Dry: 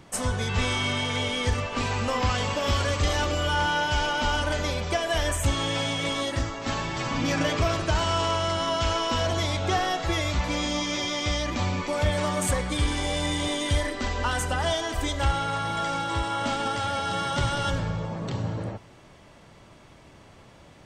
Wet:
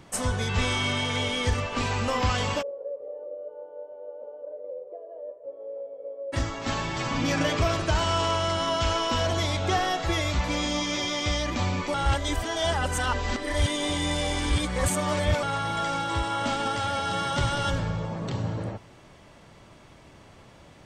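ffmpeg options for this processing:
-filter_complex "[0:a]asplit=3[s0][s1][s2];[s0]afade=t=out:st=2.61:d=0.02[s3];[s1]asuperpass=centerf=510:order=4:qfactor=4.5,afade=t=in:st=2.61:d=0.02,afade=t=out:st=6.32:d=0.02[s4];[s2]afade=t=in:st=6.32:d=0.02[s5];[s3][s4][s5]amix=inputs=3:normalize=0,asplit=3[s6][s7][s8];[s6]atrim=end=11.942[s9];[s7]atrim=start=11.938:end=15.432,asetpts=PTS-STARTPTS,areverse[s10];[s8]atrim=start=15.428[s11];[s9][s10]acrossfade=d=0.004:c1=hsin:c2=hsin[s12];[s12][s11]acrossfade=d=0.004:c1=hsin:c2=hsin"

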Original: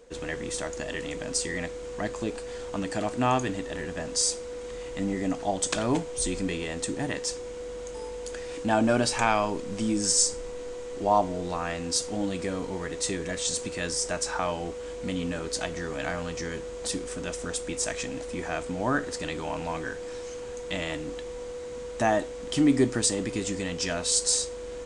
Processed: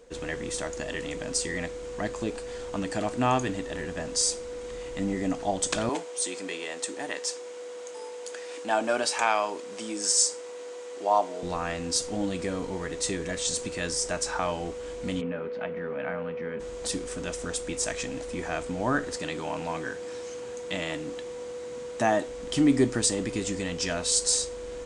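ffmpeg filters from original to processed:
-filter_complex "[0:a]asettb=1/sr,asplit=3[s0][s1][s2];[s0]atrim=end=5.894[s3];[s1]atrim=start=5.89:end=11.43,asetpts=PTS-STARTPTS,afade=t=in:d=0.004:c=qsin,afade=t=out:st=5.536:d=0.004:c=qsin,highpass=450[s4];[s2]atrim=start=11.426[s5];[s3][s4]acrossfade=d=0.004:c1=hsin:c2=qsin[s6];[s6][s5]acrossfade=d=0.004:c1=qsin:c2=hsin,asplit=3[s7][s8][s9];[s7]afade=t=out:st=15.2:d=0.02[s10];[s8]highpass=190,equalizer=f=210:t=q:w=4:g=7,equalizer=f=320:t=q:w=4:g=-10,equalizer=f=500:t=q:w=4:g=4,equalizer=f=730:t=q:w=4:g=-4,equalizer=f=1100:t=q:w=4:g=-3,equalizer=f=1800:t=q:w=4:g=-4,lowpass=f=2300:w=0.5412,lowpass=f=2300:w=1.3066,afade=t=in:st=15.2:d=0.02,afade=t=out:st=16.59:d=0.02[s11];[s9]afade=t=in:st=16.59:d=0.02[s12];[s10][s11][s12]amix=inputs=3:normalize=0,asettb=1/sr,asplit=3[s13][s14][s15];[s13]atrim=end=19.174[s16];[s14]atrim=start=19.17:end=22.28,asetpts=PTS-STARTPTS,afade=t=in:d=0.004:c=qsin,afade=t=out:st=3.106:d=0.004:c=qsin,highpass=110[s17];[s15]atrim=start=22.276[s18];[s16][s17]acrossfade=d=0.004:c1=hsin:c2=qsin[s19];[s19][s18]acrossfade=d=0.004:c1=qsin:c2=hsin"

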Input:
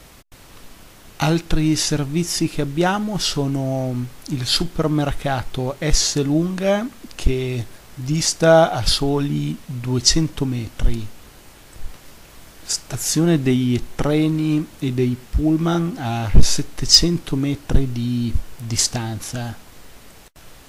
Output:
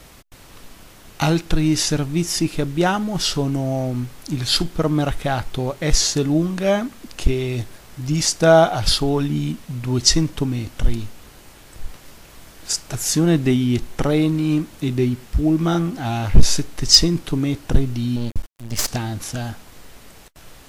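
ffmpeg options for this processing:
-filter_complex "[0:a]asettb=1/sr,asplit=3[s0][s1][s2];[s0]atrim=end=18.164[s3];[s1]atrim=start=18.16:end=18.88,asetpts=PTS-STARTPTS,afade=t=in:d=0.004:c=qsin,afade=t=out:st=0.716:d=0.004:c=qsin,aeval=exprs='max(val(0),0)':c=same[s4];[s2]atrim=start=18.876[s5];[s3][s4]acrossfade=d=0.004:c1=hsin:c2=qsin[s6];[s6][s5]acrossfade=d=0.004:c1=qsin:c2=hsin"

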